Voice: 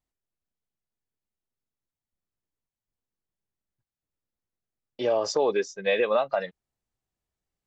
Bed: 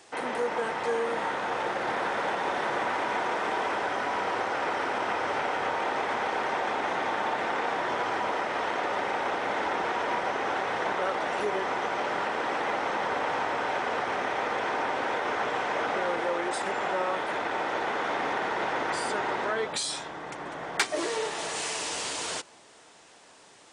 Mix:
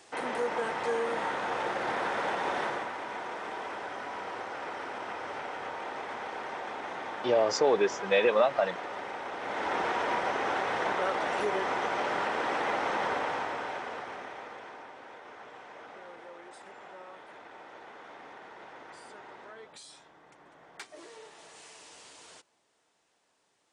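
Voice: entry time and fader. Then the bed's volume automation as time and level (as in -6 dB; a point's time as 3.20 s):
2.25 s, -0.5 dB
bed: 2.63 s -2 dB
2.92 s -9 dB
9.31 s -9 dB
9.76 s -1 dB
13.07 s -1 dB
14.95 s -19 dB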